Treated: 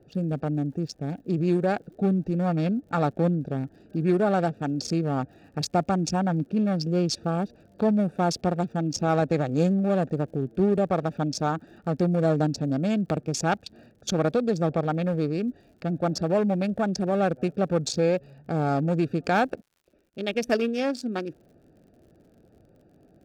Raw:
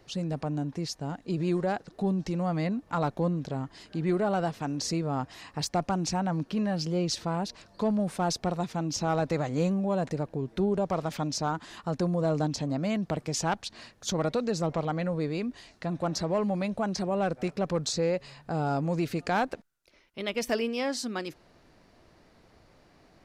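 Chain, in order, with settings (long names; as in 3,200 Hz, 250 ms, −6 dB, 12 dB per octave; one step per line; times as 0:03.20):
adaptive Wiener filter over 41 samples
notch comb filter 1,000 Hz
surface crackle 66 per second −59 dBFS
level +6 dB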